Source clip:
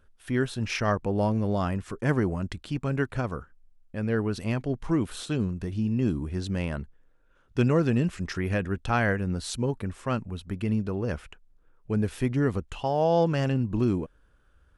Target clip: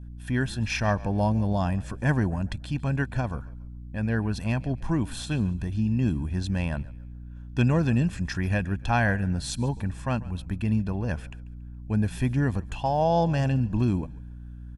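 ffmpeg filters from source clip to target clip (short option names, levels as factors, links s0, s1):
-filter_complex "[0:a]adynamicequalizer=threshold=0.0112:dfrequency=1600:dqfactor=0.94:tfrequency=1600:tqfactor=0.94:attack=5:release=100:ratio=0.375:range=2:mode=cutabove:tftype=bell,aeval=exprs='val(0)+0.00794*(sin(2*PI*60*n/s)+sin(2*PI*2*60*n/s)/2+sin(2*PI*3*60*n/s)/3+sin(2*PI*4*60*n/s)/4+sin(2*PI*5*60*n/s)/5)':c=same,aecho=1:1:1.2:0.56,asplit=2[s0][s1];[s1]asplit=3[s2][s3][s4];[s2]adelay=140,afreqshift=-41,volume=0.0944[s5];[s3]adelay=280,afreqshift=-82,volume=0.032[s6];[s4]adelay=420,afreqshift=-123,volume=0.011[s7];[s5][s6][s7]amix=inputs=3:normalize=0[s8];[s0][s8]amix=inputs=2:normalize=0"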